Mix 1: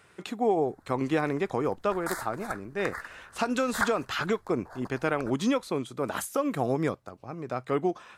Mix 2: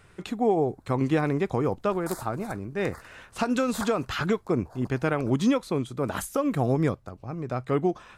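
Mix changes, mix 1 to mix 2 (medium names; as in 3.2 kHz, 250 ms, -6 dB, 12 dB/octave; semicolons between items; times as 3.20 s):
speech: remove high-pass 310 Hz 6 dB/octave; background: add peaking EQ 1.8 kHz -13 dB 1.3 oct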